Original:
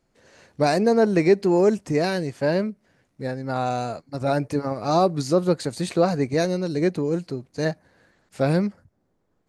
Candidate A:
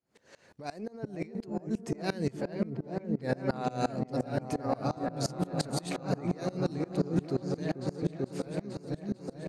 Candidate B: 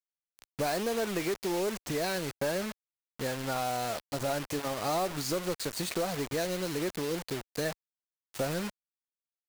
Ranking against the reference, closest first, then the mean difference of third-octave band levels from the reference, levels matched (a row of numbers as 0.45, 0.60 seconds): A, B; 8.5, 11.5 decibels